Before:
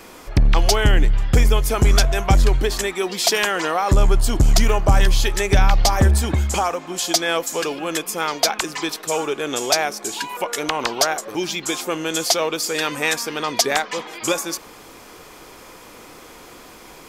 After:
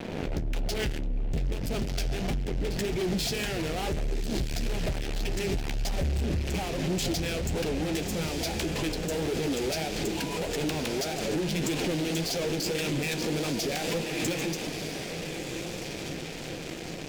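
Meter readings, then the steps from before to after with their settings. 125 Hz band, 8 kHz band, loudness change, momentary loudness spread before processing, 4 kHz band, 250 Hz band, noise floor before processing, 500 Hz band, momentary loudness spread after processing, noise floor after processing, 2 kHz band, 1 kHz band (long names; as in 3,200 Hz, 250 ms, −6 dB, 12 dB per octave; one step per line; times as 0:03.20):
−10.0 dB, −12.5 dB, −11.0 dB, 8 LU, −10.0 dB, −3.5 dB, −43 dBFS, −8.0 dB, 6 LU, −37 dBFS, −11.0 dB, −15.0 dB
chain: adaptive Wiener filter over 25 samples
downward compressor 6 to 1, threshold −27 dBFS, peak gain reduction 16 dB
graphic EQ with 15 bands 160 Hz +10 dB, 2,500 Hz +6 dB, 10,000 Hz −12 dB
on a send: feedback delay with all-pass diffusion 1,283 ms, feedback 57%, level −10.5 dB
on the sum: fuzz pedal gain 36 dB, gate −42 dBFS
brickwall limiter −21 dBFS, peak gain reduction 10.5 dB
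flanger 1.7 Hz, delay 6.9 ms, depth 9.5 ms, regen −43%
parametric band 1,100 Hz −12 dB 0.94 octaves
background raised ahead of every attack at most 30 dB per second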